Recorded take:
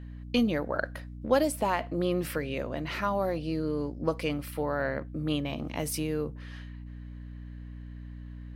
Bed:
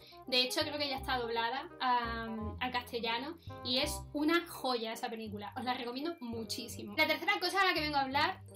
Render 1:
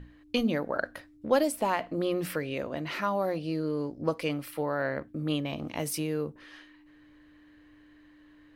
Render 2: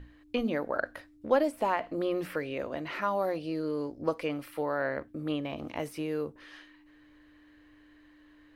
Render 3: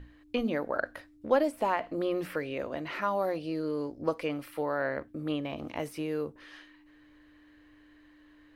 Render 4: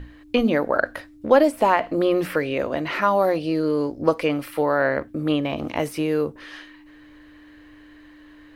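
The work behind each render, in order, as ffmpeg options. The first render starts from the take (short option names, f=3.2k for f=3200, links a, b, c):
-af "bandreject=f=60:t=h:w=6,bandreject=f=120:t=h:w=6,bandreject=f=180:t=h:w=6,bandreject=f=240:t=h:w=6"
-filter_complex "[0:a]acrossover=split=2600[a][b];[b]acompressor=threshold=-50dB:ratio=4:attack=1:release=60[c];[a][c]amix=inputs=2:normalize=0,equalizer=f=160:t=o:w=1.1:g=-7"
-af anull
-af "volume=10.5dB,alimiter=limit=-3dB:level=0:latency=1"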